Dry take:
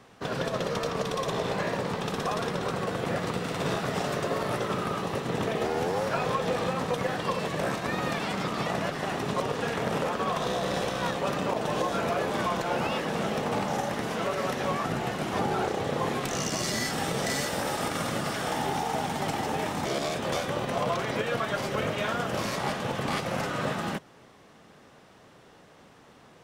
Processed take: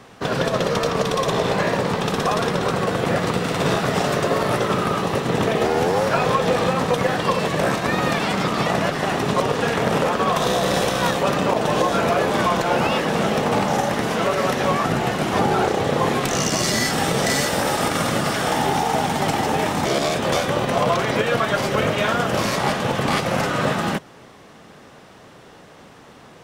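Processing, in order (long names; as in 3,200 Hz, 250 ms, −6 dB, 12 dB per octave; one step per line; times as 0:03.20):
0:10.36–0:11.23: high-shelf EQ 7,800 Hz +7.5 dB
level +9 dB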